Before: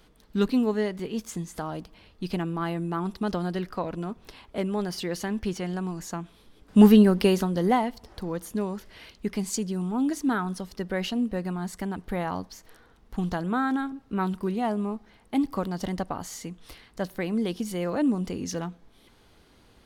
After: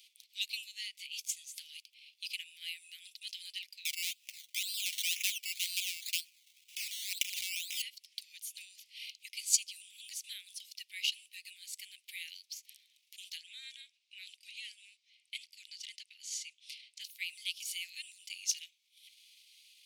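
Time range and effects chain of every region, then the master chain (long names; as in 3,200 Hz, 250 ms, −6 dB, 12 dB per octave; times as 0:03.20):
0:03.85–0:07.82: wrap-around overflow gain 13.5 dB + compressor whose output falls as the input rises −29 dBFS + sample-and-hold swept by an LFO 14×, swing 60% 2 Hz
0:13.37–0:17.01: low-pass filter 7,300 Hz + dynamic equaliser 3,200 Hz, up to −3 dB, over −45 dBFS, Q 1.1
whole clip: transient designer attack 0 dB, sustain −7 dB; Butterworth high-pass 2,300 Hz 72 dB per octave; level +5.5 dB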